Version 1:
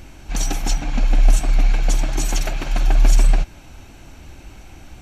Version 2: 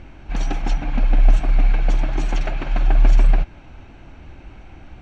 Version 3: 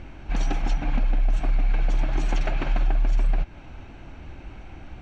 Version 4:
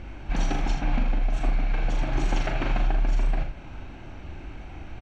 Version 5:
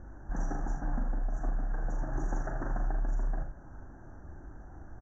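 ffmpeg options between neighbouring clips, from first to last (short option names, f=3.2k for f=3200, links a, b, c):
-af "lowpass=2.6k"
-af "alimiter=limit=-14.5dB:level=0:latency=1:release=183"
-af "aecho=1:1:39|80:0.531|0.398"
-af "asuperstop=centerf=3300:order=20:qfactor=0.81,aresample=16000,aresample=44100,volume=-8dB"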